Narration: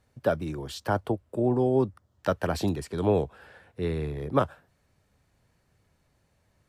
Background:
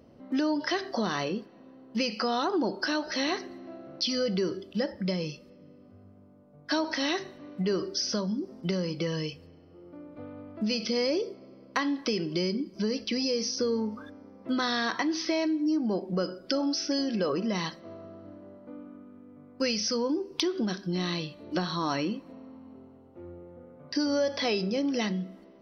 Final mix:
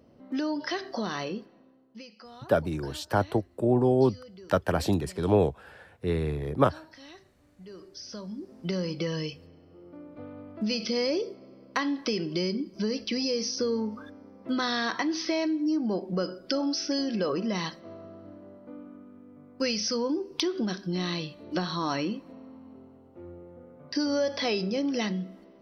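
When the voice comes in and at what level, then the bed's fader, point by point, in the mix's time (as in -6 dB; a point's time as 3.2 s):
2.25 s, +1.5 dB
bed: 1.49 s -2.5 dB
2.12 s -20 dB
7.58 s -20 dB
8.78 s 0 dB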